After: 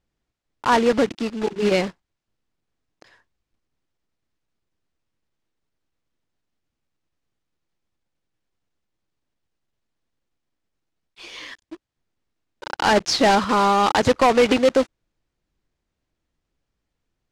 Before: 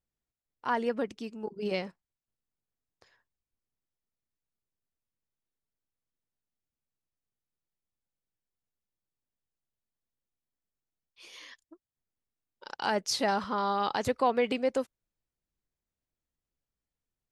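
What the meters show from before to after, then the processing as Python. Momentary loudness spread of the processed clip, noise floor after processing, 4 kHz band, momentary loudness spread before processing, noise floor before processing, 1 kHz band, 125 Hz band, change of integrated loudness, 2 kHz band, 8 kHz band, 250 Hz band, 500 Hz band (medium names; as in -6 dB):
16 LU, -81 dBFS, +11.5 dB, 18 LU, under -85 dBFS, +11.5 dB, +13.0 dB, +11.5 dB, +12.0 dB, +10.0 dB, +12.5 dB, +11.5 dB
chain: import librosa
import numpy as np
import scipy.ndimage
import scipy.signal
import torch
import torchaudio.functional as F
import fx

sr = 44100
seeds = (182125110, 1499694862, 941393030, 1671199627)

p1 = fx.block_float(x, sr, bits=3)
p2 = fx.air_absorb(p1, sr, metres=90.0)
p3 = fx.fold_sine(p2, sr, drive_db=6, ceiling_db=-14.5)
p4 = p2 + (p3 * 10.0 ** (-4.5 / 20.0))
p5 = fx.peak_eq(p4, sr, hz=320.0, db=4.0, octaves=0.28)
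y = p5 * 10.0 ** (4.0 / 20.0)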